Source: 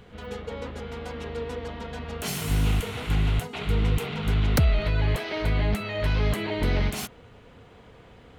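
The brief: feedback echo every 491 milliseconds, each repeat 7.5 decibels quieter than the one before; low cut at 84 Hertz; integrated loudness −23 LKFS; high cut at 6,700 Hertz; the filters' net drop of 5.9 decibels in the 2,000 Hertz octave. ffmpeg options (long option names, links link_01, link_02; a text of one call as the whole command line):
ffmpeg -i in.wav -af "highpass=84,lowpass=6700,equalizer=frequency=2000:width_type=o:gain=-7.5,aecho=1:1:491|982|1473|1964|2455:0.422|0.177|0.0744|0.0312|0.0131,volume=6.5dB" out.wav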